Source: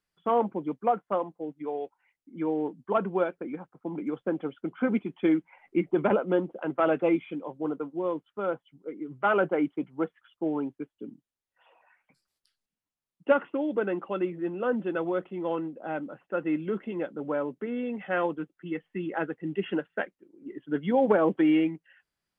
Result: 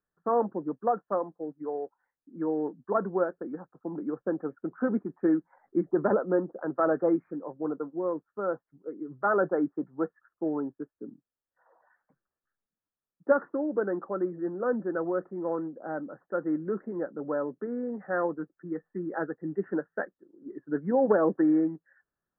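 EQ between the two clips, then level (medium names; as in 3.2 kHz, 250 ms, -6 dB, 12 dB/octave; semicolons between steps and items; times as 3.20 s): rippled Chebyshev low-pass 1.8 kHz, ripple 3 dB; 0.0 dB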